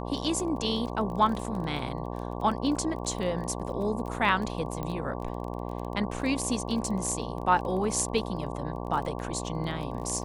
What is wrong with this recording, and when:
mains buzz 60 Hz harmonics 19 −35 dBFS
surface crackle 18 per second −34 dBFS
0:04.83: click −21 dBFS

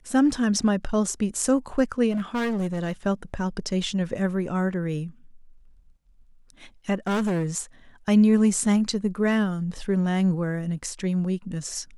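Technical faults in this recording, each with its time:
0:02.11–0:02.93: clipping −23 dBFS
0:07.07–0:07.46: clipping −21.5 dBFS

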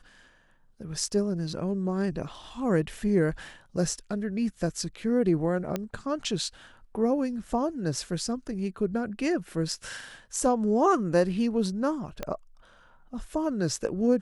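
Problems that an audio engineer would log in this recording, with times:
0:05.76: click −15 dBFS
0:12.23: click −17 dBFS

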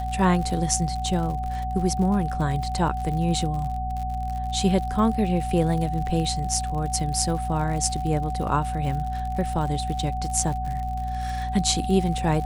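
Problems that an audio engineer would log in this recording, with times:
surface crackle 74 per second −31 dBFS
mains hum 60 Hz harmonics 4 −30 dBFS
whistle 750 Hz −29 dBFS

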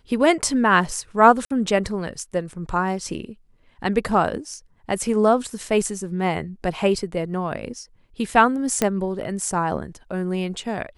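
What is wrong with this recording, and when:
0:01.45–0:01.50: drop-out 54 ms
0:08.82: click −5 dBFS

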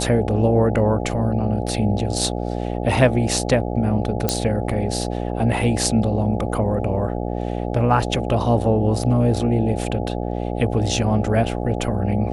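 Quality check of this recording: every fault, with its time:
mains buzz 60 Hz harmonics 14 −25 dBFS
0:04.29: click −3 dBFS

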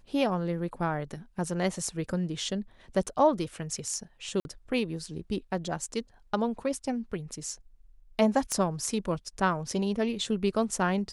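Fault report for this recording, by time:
0:04.40–0:04.45: drop-out 51 ms
0:08.52: click −15 dBFS

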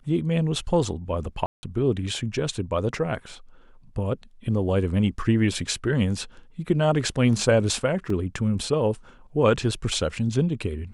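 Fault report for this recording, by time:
0:01.46–0:01.63: drop-out 170 ms
0:08.10: drop-out 3 ms

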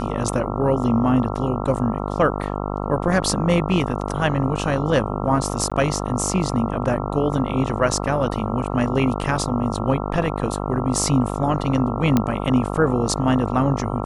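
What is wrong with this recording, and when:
mains buzz 50 Hz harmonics 27 −26 dBFS
0:05.70–0:05.72: drop-out 16 ms
0:12.17: click −5 dBFS

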